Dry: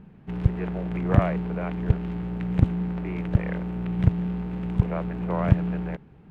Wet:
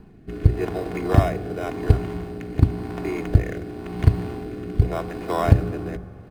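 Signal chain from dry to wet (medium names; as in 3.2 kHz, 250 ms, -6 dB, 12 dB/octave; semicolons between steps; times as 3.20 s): comb 2.8 ms, depth 56%; in parallel at -8.5 dB: sample-and-hold 10×; on the sum: rotary cabinet horn 0.9 Hz; on a send at -14.5 dB: reverberation RT60 2.9 s, pre-delay 3 ms; on the sum: wavefolder -5 dBFS; hum notches 60/120/180 Hz; trim +4 dB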